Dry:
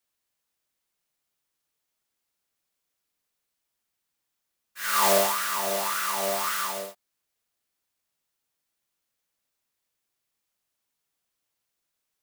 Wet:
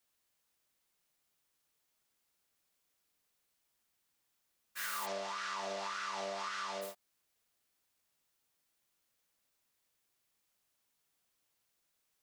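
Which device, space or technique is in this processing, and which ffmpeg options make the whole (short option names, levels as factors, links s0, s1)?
serial compression, peaks first: -filter_complex "[0:a]asplit=3[s0][s1][s2];[s0]afade=t=out:st=5.05:d=0.02[s3];[s1]lowpass=f=5900:w=0.5412,lowpass=f=5900:w=1.3066,afade=t=in:st=5.05:d=0.02,afade=t=out:st=6.81:d=0.02[s4];[s2]afade=t=in:st=6.81:d=0.02[s5];[s3][s4][s5]amix=inputs=3:normalize=0,acompressor=threshold=0.0282:ratio=6,acompressor=threshold=0.00708:ratio=2,volume=1.12"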